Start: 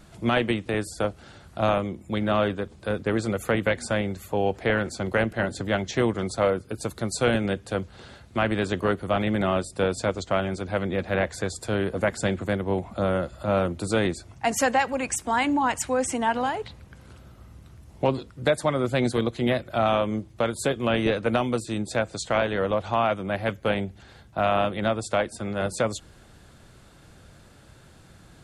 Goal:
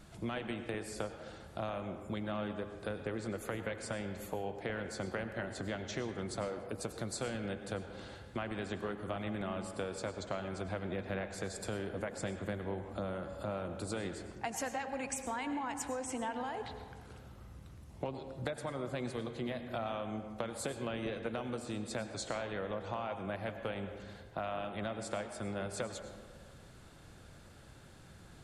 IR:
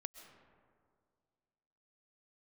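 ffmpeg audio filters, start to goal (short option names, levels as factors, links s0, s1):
-filter_complex "[0:a]acompressor=threshold=0.0282:ratio=6[s0];[1:a]atrim=start_sample=2205,asetrate=57330,aresample=44100[s1];[s0][s1]afir=irnorm=-1:irlink=0,volume=1.26"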